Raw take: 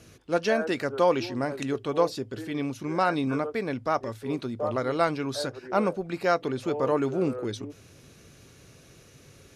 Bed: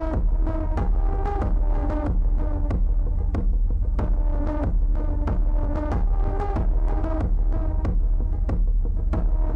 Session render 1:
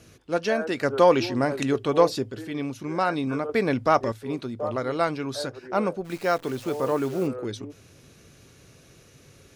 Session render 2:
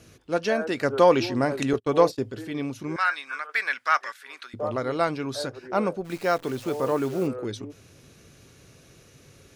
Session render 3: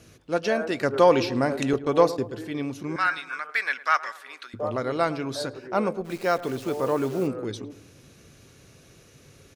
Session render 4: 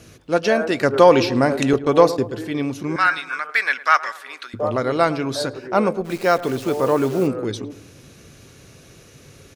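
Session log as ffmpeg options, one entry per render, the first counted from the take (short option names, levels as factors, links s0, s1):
-filter_complex "[0:a]asettb=1/sr,asplit=3[s0][s1][s2];[s0]atrim=end=0.834[s3];[s1]atrim=start=0.83:end=2.31,asetpts=PTS-STARTPTS,afade=t=in:d=0.004:c=qsin,afade=t=out:st=1.476:d=0.004:c=qsin,acontrast=30[s4];[s2]atrim=start=2.306[s5];[s3][s4]acrossfade=d=0.004:c1=hsin:c2=qsin[s6];[s6][s5]acrossfade=d=0.004:c1=qsin:c2=hsin,asettb=1/sr,asplit=3[s7][s8][s9];[s7]atrim=end=3.494[s10];[s8]atrim=start=3.49:end=4.12,asetpts=PTS-STARTPTS,afade=t=in:d=0.004:c=qsin,afade=t=out:st=0.626:d=0.004:c=qsin,acontrast=72[s11];[s9]atrim=start=4.116[s12];[s10][s11]acrossfade=d=0.004:c1=hsin:c2=qsin[s13];[s13][s12]acrossfade=d=0.004:c1=qsin:c2=hsin,asplit=3[s14][s15][s16];[s14]afade=t=out:st=6.04:d=0.02[s17];[s15]acrusher=bits=8:dc=4:mix=0:aa=0.000001,afade=t=in:st=6.04:d=0.02,afade=t=out:st=7.26:d=0.02[s18];[s16]afade=t=in:st=7.26:d=0.02[s19];[s17][s18][s19]amix=inputs=3:normalize=0"
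-filter_complex "[0:a]asettb=1/sr,asplit=3[s0][s1][s2];[s0]atrim=end=1.734[s3];[s1]atrim=start=1.73:end=2.21,asetpts=PTS-STARTPTS,afade=t=in:d=0.004:c=qsin,afade=t=out:st=0.476:d=0.004:c=qsin,agate=range=0.0178:threshold=0.0282:ratio=16:release=100:detection=peak[s4];[s2]atrim=start=2.206[s5];[s3][s4]acrossfade=d=0.004:c1=hsin:c2=qsin[s6];[s6][s5]acrossfade=d=0.004:c1=qsin:c2=hsin,asettb=1/sr,asplit=3[s7][s8][s9];[s7]atrim=end=2.964[s10];[s8]atrim=start=2.96:end=4.54,asetpts=PTS-STARTPTS,afade=t=in:d=0.004:c=qsin,afade=t=out:st=1.576:d=0.004:c=qsin,highpass=f=1600:t=q:w=2.8[s11];[s9]atrim=start=4.536[s12];[s10][s11]acrossfade=d=0.004:c1=hsin:c2=qsin[s13];[s13][s12]acrossfade=d=0.004:c1=qsin:c2=hsin"
-filter_complex "[0:a]asplit=2[s0][s1];[s1]adelay=109,lowpass=f=1200:p=1,volume=0.178,asplit=2[s2][s3];[s3]adelay=109,lowpass=f=1200:p=1,volume=0.53,asplit=2[s4][s5];[s5]adelay=109,lowpass=f=1200:p=1,volume=0.53,asplit=2[s6][s7];[s7]adelay=109,lowpass=f=1200:p=1,volume=0.53,asplit=2[s8][s9];[s9]adelay=109,lowpass=f=1200:p=1,volume=0.53[s10];[s0][s2][s4][s6][s8][s10]amix=inputs=6:normalize=0"
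-af "volume=2.11,alimiter=limit=0.891:level=0:latency=1"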